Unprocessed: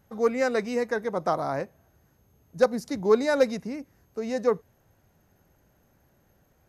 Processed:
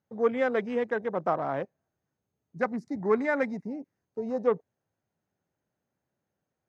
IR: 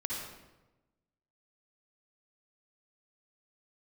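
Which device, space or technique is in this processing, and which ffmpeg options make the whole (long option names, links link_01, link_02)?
over-cleaned archive recording: -filter_complex "[0:a]highpass=120,lowpass=7000,afwtdn=0.0141,asettb=1/sr,asplit=3[link_01][link_02][link_03];[link_01]atrim=end=2.594[link_04];[link_02]atrim=start=2.59:end=3.67,asetpts=PTS-STARTPTS,afade=type=in:duration=0.004:curve=qsin,afade=type=out:start_time=1.076:duration=0.004:curve=qsin,equalizer=frequency=500:width_type=o:width=0.33:gain=-9,equalizer=frequency=2000:width_type=o:width=0.33:gain=8,equalizer=frequency=3150:width_type=o:width=0.33:gain=-11,equalizer=frequency=8000:width_type=o:width=0.33:gain=3[link_05];[link_03]atrim=start=3.666[link_06];[link_04][link_05]acrossfade=duration=0.004:curve1=hsin:curve2=qsin[link_07];[link_07][link_06]acrossfade=duration=0.004:curve1=qsin:curve2=hsin,volume=-1.5dB"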